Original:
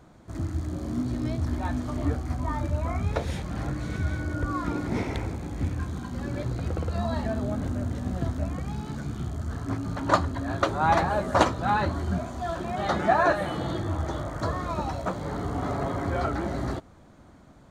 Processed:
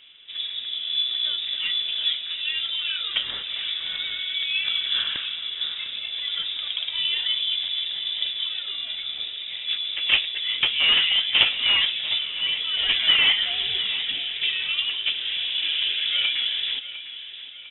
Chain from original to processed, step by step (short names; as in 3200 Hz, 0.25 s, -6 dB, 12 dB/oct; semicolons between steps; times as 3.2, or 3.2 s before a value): HPF 200 Hz 12 dB/oct; notch 1200 Hz, Q 14; in parallel at -7 dB: wrapped overs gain 18 dB; on the sum: air absorption 180 m; inverted band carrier 3700 Hz; feedback echo 0.703 s, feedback 49%, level -13.5 dB; gain +3 dB